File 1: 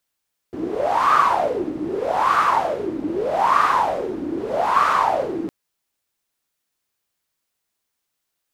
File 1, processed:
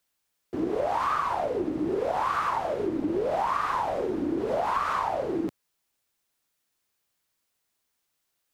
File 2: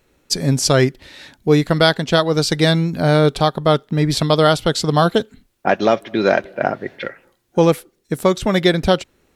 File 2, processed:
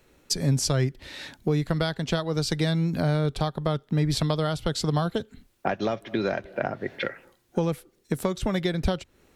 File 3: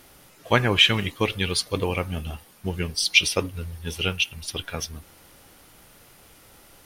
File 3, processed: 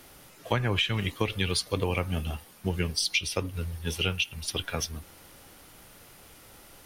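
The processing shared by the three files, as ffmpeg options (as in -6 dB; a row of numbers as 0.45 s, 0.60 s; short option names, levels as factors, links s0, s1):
-filter_complex "[0:a]acrossover=split=120[s0][s1];[s1]acompressor=threshold=0.0631:ratio=8[s2];[s0][s2]amix=inputs=2:normalize=0"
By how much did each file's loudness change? -8.0 LU, -10.0 LU, -6.0 LU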